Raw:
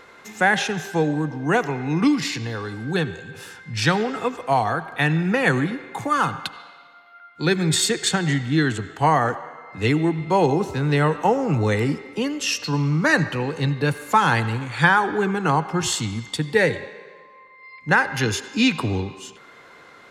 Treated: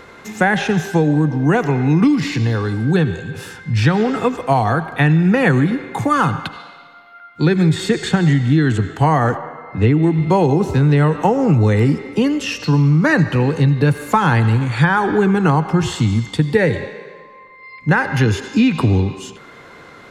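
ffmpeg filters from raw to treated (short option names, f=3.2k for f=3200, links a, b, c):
-filter_complex "[0:a]asettb=1/sr,asplit=3[a][b][c];[a]atrim=end=9.374[d];[b]atrim=start=9.37:end=10.03,asetpts=PTS-STARTPTS,afade=t=in:d=0.004:c=qsin,afade=t=out:st=0.656:d=0.004:c=qsin,aemphasis=mode=reproduction:type=75fm[e];[c]atrim=start=10.026[f];[d][e]acrossfade=d=0.004:c1=hsin:c2=qsin[g];[g][f]acrossfade=d=0.004:c1=qsin:c2=hsin,acrossover=split=2900[h][i];[i]acompressor=threshold=-35dB:ratio=4:attack=1:release=60[j];[h][j]amix=inputs=2:normalize=0,lowshelf=f=310:g=9.5,acompressor=threshold=-15dB:ratio=6,volume=5dB"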